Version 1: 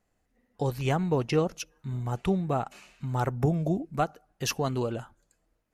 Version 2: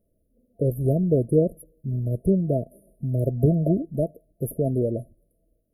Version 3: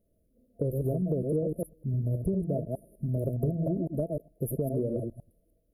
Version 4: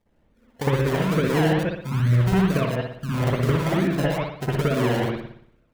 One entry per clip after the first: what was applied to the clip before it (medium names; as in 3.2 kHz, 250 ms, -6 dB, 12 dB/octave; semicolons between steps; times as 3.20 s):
FFT band-reject 680–9400 Hz; trim +6 dB
chunks repeated in reverse 102 ms, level -4.5 dB; compression 5:1, threshold -24 dBFS, peak gain reduction 11 dB; trim -2 dB
decimation with a swept rate 30×, swing 60% 2.3 Hz; reverberation, pre-delay 58 ms, DRR -7 dB